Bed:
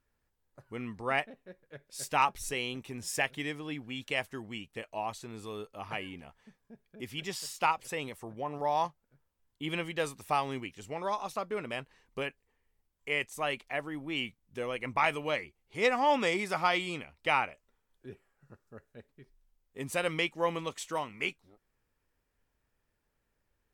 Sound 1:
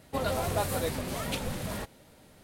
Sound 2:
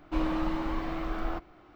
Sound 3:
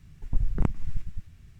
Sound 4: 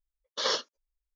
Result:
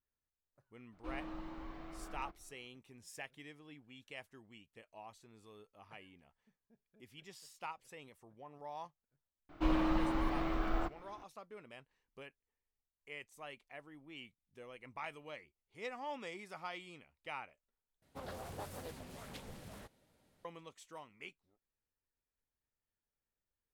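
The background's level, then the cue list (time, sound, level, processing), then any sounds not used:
bed -17 dB
0.92 add 2 -16 dB
9.49 add 2 -2.5 dB
18.02 replace with 1 -16.5 dB + Doppler distortion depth 0.6 ms
not used: 3, 4

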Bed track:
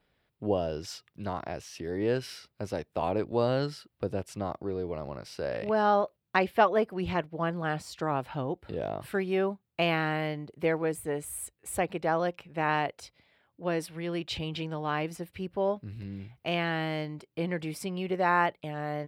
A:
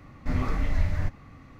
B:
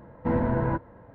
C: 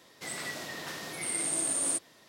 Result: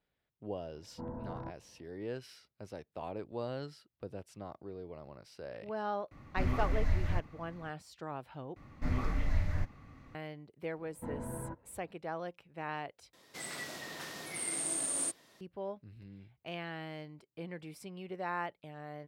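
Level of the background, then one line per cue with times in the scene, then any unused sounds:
bed track -12 dB
0.73 add B -17.5 dB + LPF 1300 Hz 24 dB/oct
6.11 add A -5.5 dB
8.56 replace with A -6 dB
10.77 add B -16 dB + bell 2000 Hz -2.5 dB 1.5 oct
13.13 replace with C -4.5 dB

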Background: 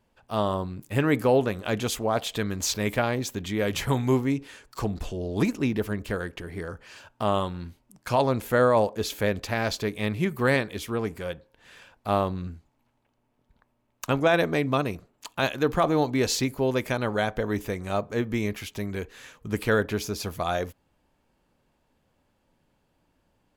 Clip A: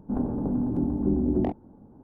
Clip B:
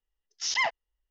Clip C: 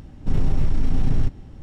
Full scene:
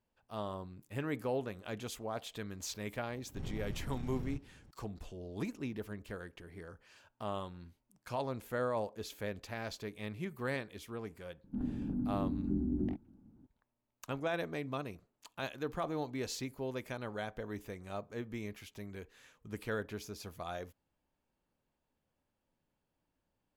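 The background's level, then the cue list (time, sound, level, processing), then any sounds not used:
background -14.5 dB
3.09 add C -16.5 dB + HPF 64 Hz 6 dB/oct
11.44 add A -9 dB + band shelf 670 Hz -12 dB
not used: B

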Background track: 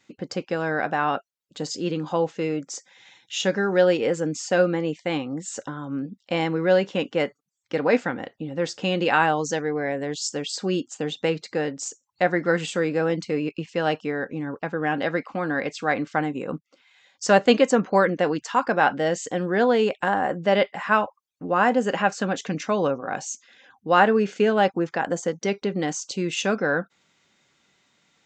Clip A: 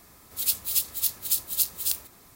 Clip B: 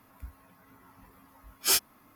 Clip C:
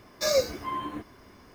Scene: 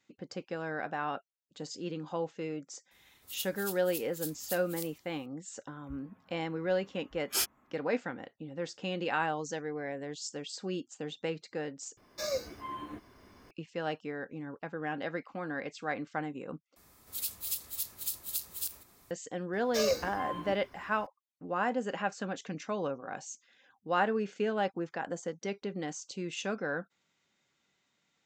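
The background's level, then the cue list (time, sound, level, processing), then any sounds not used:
background track -11.5 dB
2.91 add A -15.5 dB
5.67 add B -6 dB + Wiener smoothing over 9 samples
11.97 replace with C -10 dB + recorder AGC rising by 5.7 dB/s
16.76 replace with A -8 dB + limiter -13 dBFS
19.53 add C -5.5 dB

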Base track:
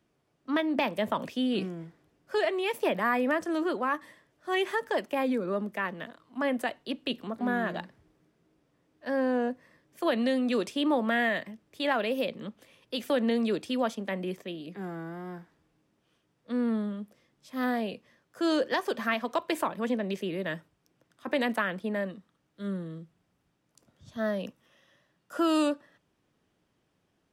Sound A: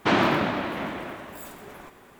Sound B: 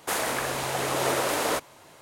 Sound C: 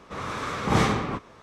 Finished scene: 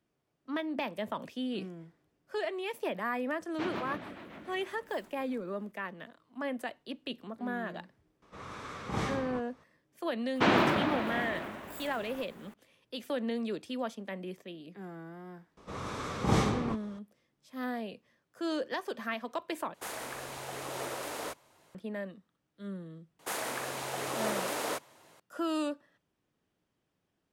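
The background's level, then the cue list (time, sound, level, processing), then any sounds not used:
base track -7 dB
3.53 add A -15 dB + rotary speaker horn 7 Hz
8.22 add C -12 dB
10.35 add A -4 dB
15.57 add C -4 dB + bell 1800 Hz -5.5 dB 1.9 oct
19.74 replace with B -12.5 dB
23.19 add B -8 dB + HPF 120 Hz

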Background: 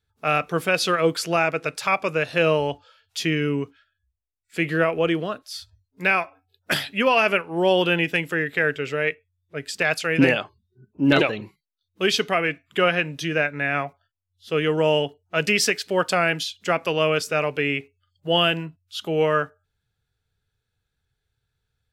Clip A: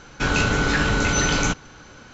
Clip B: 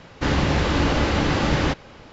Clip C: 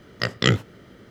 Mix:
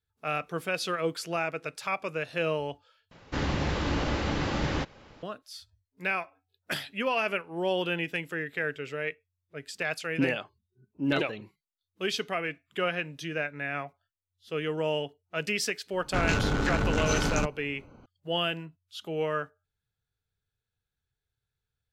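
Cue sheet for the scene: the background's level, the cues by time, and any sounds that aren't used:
background -9.5 dB
3.11 replace with B -8.5 dB
15.93 add A -5 dB + Wiener smoothing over 25 samples
not used: C

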